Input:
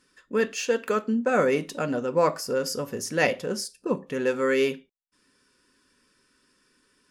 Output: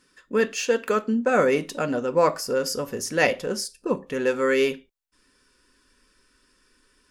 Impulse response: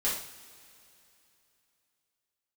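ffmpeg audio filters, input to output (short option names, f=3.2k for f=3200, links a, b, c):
-af "asubboost=boost=6.5:cutoff=53,volume=2.5dB"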